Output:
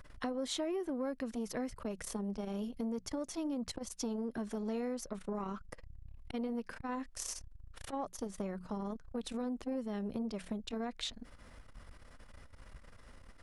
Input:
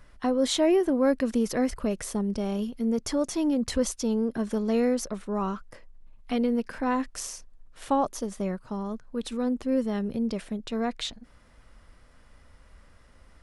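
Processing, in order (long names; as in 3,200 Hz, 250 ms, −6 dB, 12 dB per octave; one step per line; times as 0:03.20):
mains-hum notches 60/120/180 Hz
downward compressor 8 to 1, threshold −37 dBFS, peak gain reduction 18.5 dB
saturating transformer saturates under 480 Hz
level +3 dB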